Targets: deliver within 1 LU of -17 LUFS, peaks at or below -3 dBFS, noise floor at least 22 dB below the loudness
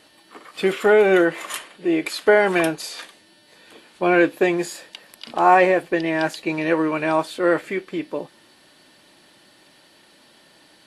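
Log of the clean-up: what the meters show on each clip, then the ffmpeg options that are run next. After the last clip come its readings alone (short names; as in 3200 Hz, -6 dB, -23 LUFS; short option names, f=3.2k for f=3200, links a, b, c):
loudness -20.0 LUFS; peak -2.5 dBFS; loudness target -17.0 LUFS
-> -af "volume=3dB,alimiter=limit=-3dB:level=0:latency=1"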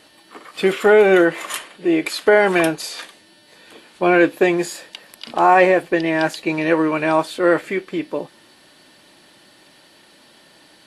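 loudness -17.5 LUFS; peak -3.0 dBFS; noise floor -51 dBFS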